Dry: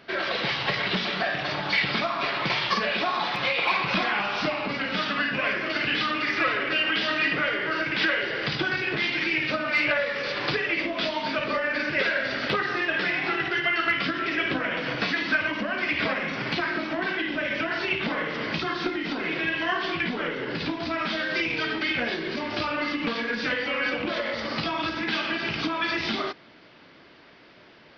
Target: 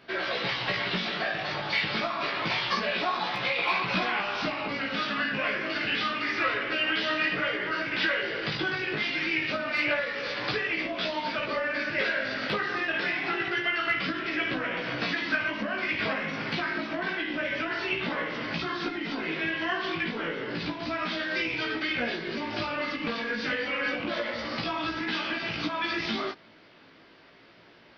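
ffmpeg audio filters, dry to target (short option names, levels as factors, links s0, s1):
-af "flanger=delay=16:depth=2.8:speed=0.28"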